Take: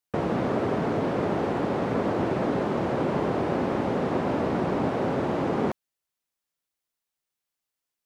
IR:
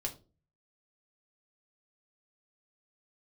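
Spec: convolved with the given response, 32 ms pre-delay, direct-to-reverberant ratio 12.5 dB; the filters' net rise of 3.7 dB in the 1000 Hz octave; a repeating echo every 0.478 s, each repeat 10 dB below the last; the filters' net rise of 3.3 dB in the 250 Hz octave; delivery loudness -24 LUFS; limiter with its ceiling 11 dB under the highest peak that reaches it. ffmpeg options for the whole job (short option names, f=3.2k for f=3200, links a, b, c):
-filter_complex "[0:a]equalizer=f=250:t=o:g=4,equalizer=f=1k:t=o:g=4.5,alimiter=limit=-20.5dB:level=0:latency=1,aecho=1:1:478|956|1434|1912:0.316|0.101|0.0324|0.0104,asplit=2[a][b];[1:a]atrim=start_sample=2205,adelay=32[c];[b][c]afir=irnorm=-1:irlink=0,volume=-13dB[d];[a][d]amix=inputs=2:normalize=0,volume=4.5dB"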